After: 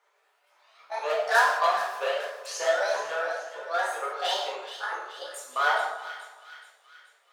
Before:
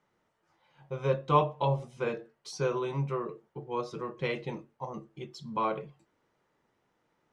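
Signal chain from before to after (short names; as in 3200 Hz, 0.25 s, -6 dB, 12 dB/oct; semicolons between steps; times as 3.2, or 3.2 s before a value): repeated pitch sweeps +10 st, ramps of 0.492 s; in parallel at -4 dB: wavefolder -28 dBFS; on the sum: inverse Chebyshev high-pass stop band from 250 Hz, stop band 40 dB; split-band echo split 1600 Hz, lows 0.157 s, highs 0.427 s, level -11.5 dB; non-linear reverb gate 0.24 s falling, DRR -3.5 dB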